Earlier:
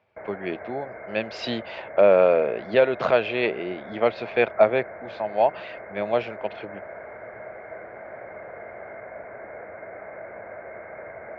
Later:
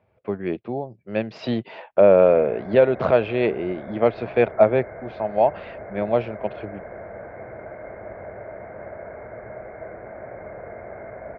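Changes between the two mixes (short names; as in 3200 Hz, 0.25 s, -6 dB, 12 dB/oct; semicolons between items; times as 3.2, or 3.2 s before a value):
background: entry +2.10 s; master: add tilt -3 dB/oct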